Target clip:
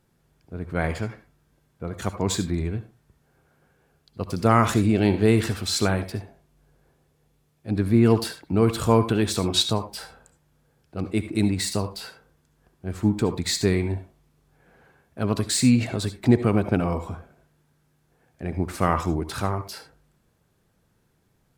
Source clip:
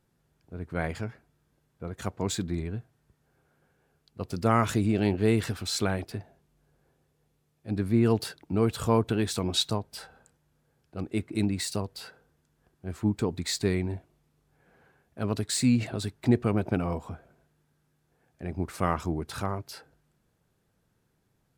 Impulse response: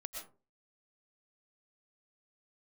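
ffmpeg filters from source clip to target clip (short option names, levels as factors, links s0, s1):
-filter_complex "[0:a]asplit=2[s0][s1];[1:a]atrim=start_sample=2205,asetrate=74970,aresample=44100[s2];[s1][s2]afir=irnorm=-1:irlink=0,volume=1.5[s3];[s0][s3]amix=inputs=2:normalize=0,volume=1.19"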